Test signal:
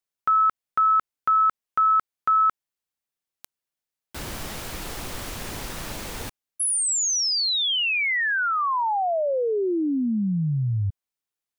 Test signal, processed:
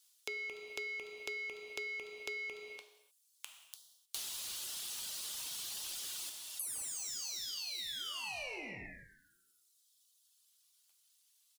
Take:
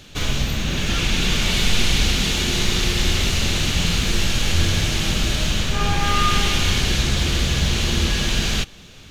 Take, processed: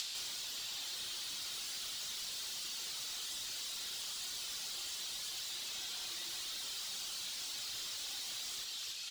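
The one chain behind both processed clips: steep high-pass 1.8 kHz 36 dB/octave; treble shelf 9.3 kHz +5 dB; delay 293 ms -18.5 dB; ring modulator 880 Hz; overload inside the chain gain 30 dB; high-order bell 5.9 kHz +10.5 dB 2.3 oct; peak limiter -24.5 dBFS; saturation -37.5 dBFS; reverb removal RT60 1.7 s; gated-style reverb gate 330 ms falling, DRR 3.5 dB; compression 6:1, threshold -54 dBFS; trim +12.5 dB

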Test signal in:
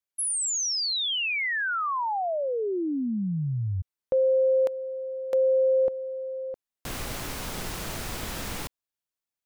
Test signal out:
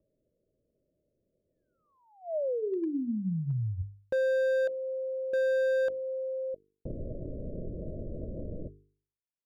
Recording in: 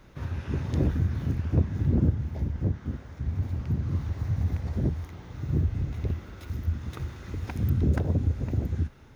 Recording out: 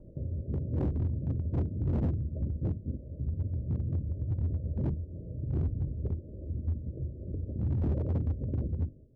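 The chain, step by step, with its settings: Chebyshev low-pass 630 Hz, order 8; expander -42 dBFS, range -33 dB; hum notches 50/100/150/200/250/300/350/400/450 Hz; upward compressor, threshold -29 dBFS; hard clipper -23 dBFS; trim -2 dB

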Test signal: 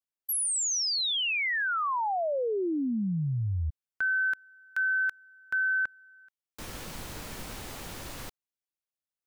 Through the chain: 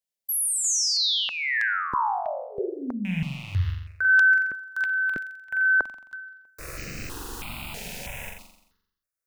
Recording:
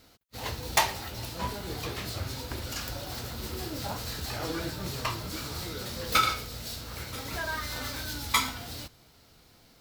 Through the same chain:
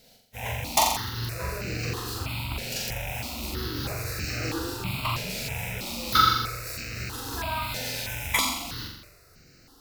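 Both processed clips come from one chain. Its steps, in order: rattle on loud lows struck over -44 dBFS, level -28 dBFS; flutter echo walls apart 7.4 m, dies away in 0.79 s; stepped phaser 3.1 Hz 310–3400 Hz; trim +3 dB

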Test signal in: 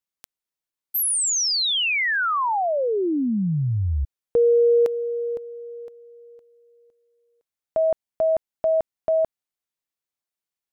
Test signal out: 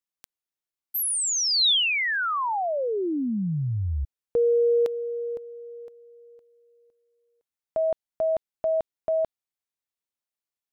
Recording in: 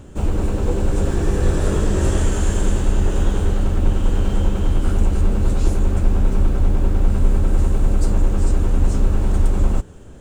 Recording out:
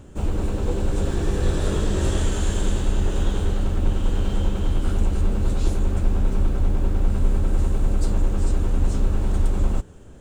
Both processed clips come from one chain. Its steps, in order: dynamic bell 3.7 kHz, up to +7 dB, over -48 dBFS, Q 2; trim -4 dB

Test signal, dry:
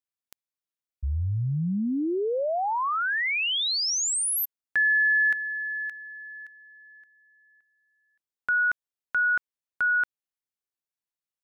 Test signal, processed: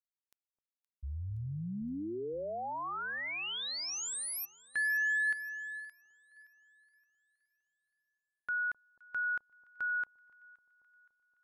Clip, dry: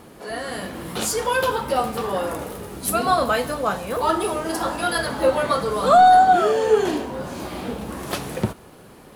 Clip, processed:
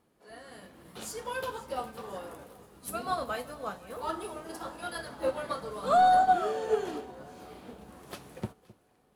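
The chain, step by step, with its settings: echo whose repeats swap between lows and highs 260 ms, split 1 kHz, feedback 71%, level -13 dB; upward expansion 1.5:1, over -42 dBFS; trim -9 dB

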